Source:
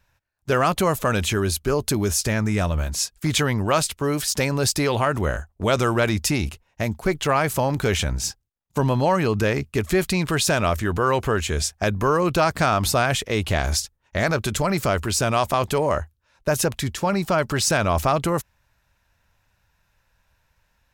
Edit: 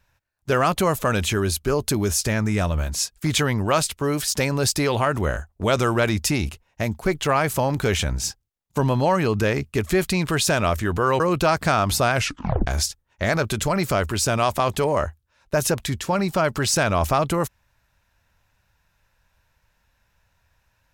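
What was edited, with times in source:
11.2–12.14 cut
13.08 tape stop 0.53 s

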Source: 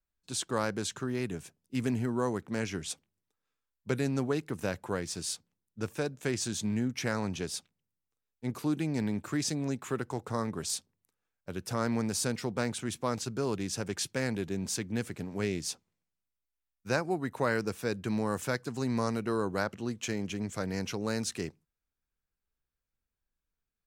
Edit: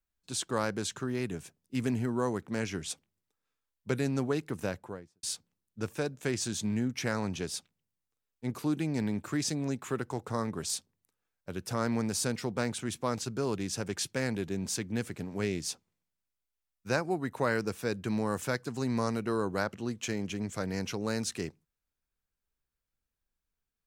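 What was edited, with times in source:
4.56–5.23 studio fade out

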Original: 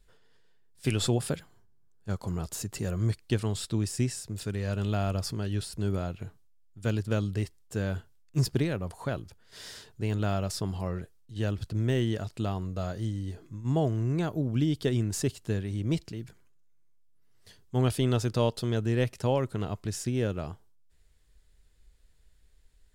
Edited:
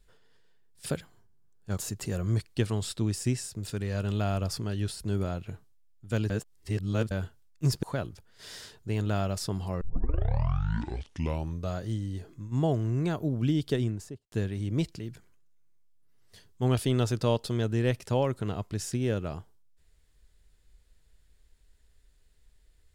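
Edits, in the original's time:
0.86–1.25 cut
2.17–2.51 cut
7.03–7.84 reverse
8.56–8.96 cut
10.94 tape start 1.91 s
14.82–15.45 studio fade out

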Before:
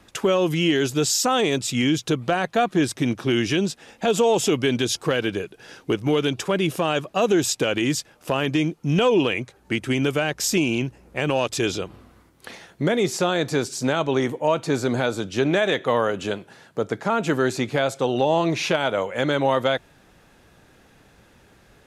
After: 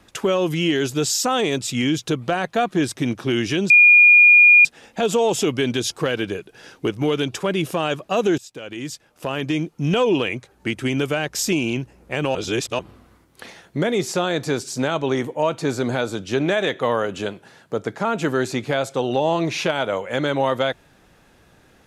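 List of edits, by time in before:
3.7 add tone 2430 Hz -7 dBFS 0.95 s
7.43–8.76 fade in, from -22.5 dB
11.4–11.84 reverse

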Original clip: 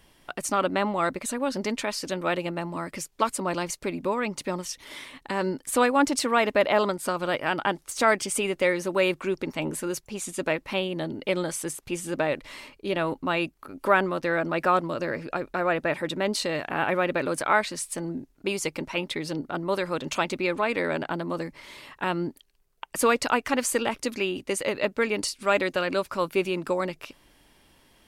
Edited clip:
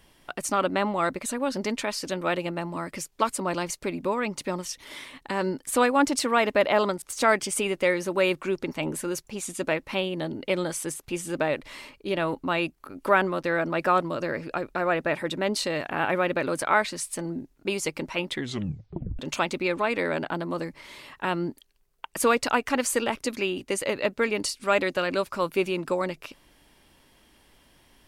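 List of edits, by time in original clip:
7.02–7.81 cut
19.09 tape stop 0.89 s

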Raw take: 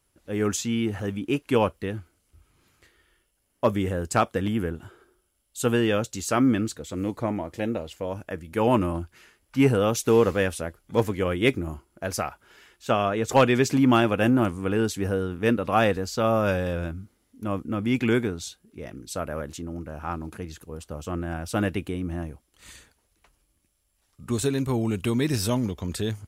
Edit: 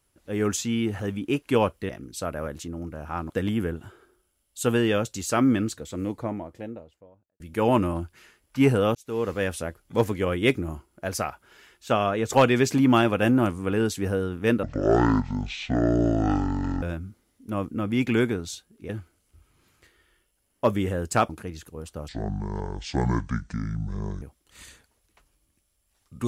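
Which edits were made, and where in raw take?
1.89–4.29 swap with 18.83–20.24
6.65–8.39 studio fade out
9.94–10.6 fade in
15.62–16.76 speed 52%
21.03–22.29 speed 59%

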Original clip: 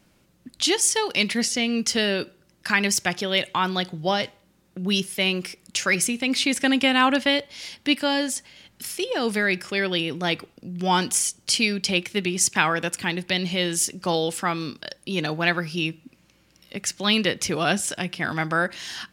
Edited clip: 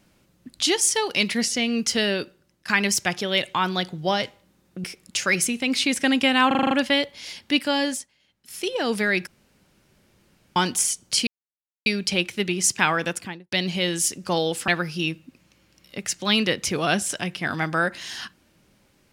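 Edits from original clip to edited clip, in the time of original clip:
2.11–2.68 fade out, to -9.5 dB
4.84–5.44 cut
7.07 stutter 0.04 s, 7 plays
8.28–8.98 dip -16.5 dB, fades 0.15 s
9.63–10.92 room tone
11.63 insert silence 0.59 s
12.85–13.29 studio fade out
14.45–15.46 cut

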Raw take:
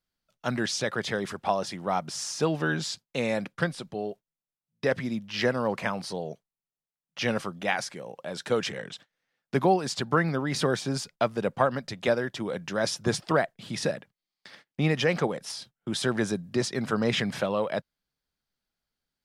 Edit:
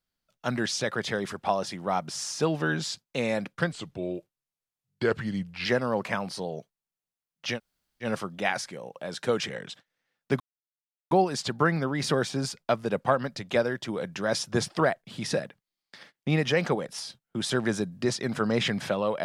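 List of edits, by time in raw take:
3.72–5.38 speed 86%
7.28 insert room tone 0.50 s, crossfade 0.10 s
9.63 insert silence 0.71 s

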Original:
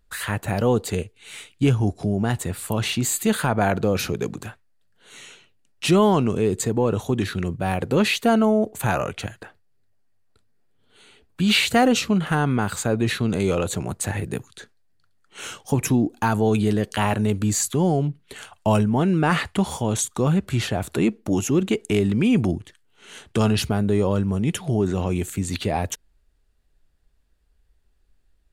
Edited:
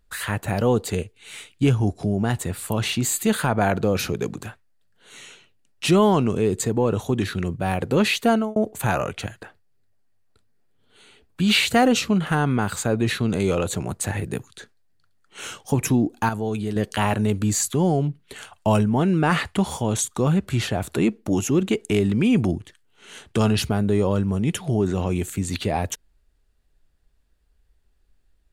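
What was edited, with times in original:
8.31–8.56 fade out
16.29–16.76 gain -6.5 dB

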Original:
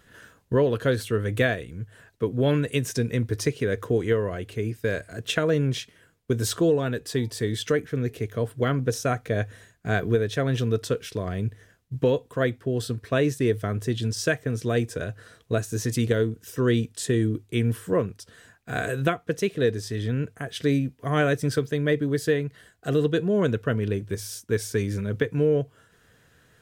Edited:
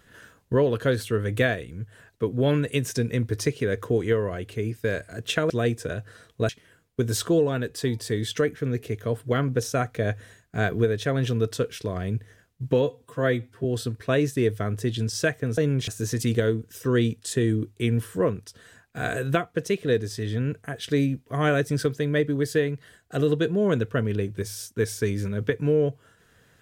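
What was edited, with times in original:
5.5–5.8 swap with 14.61–15.6
12.13–12.68 stretch 1.5×

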